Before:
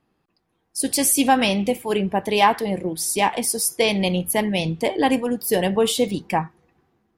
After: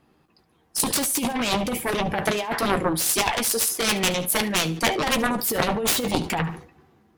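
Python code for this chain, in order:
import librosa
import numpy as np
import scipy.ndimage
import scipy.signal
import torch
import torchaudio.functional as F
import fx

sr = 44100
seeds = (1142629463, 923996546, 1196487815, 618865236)

y = fx.highpass(x, sr, hz=610.0, slope=6, at=(3.12, 5.16), fade=0.02)
y = fx.over_compress(y, sr, threshold_db=-22.0, ratio=-0.5)
y = fx.cheby_harmonics(y, sr, harmonics=(7,), levels_db=(-8,), full_scale_db=-7.0)
y = fx.doubler(y, sr, ms=13.0, db=-10.5)
y = fx.echo_feedback(y, sr, ms=72, feedback_pct=26, wet_db=-18)
y = fx.sustainer(y, sr, db_per_s=120.0)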